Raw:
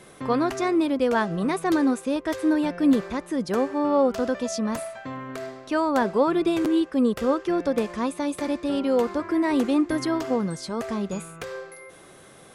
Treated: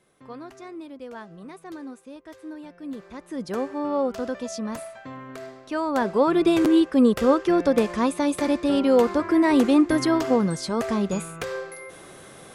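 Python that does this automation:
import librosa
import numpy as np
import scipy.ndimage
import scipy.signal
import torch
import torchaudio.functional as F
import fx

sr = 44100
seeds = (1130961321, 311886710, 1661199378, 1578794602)

y = fx.gain(x, sr, db=fx.line((2.88, -16.5), (3.43, -4.0), (5.71, -4.0), (6.52, 4.0)))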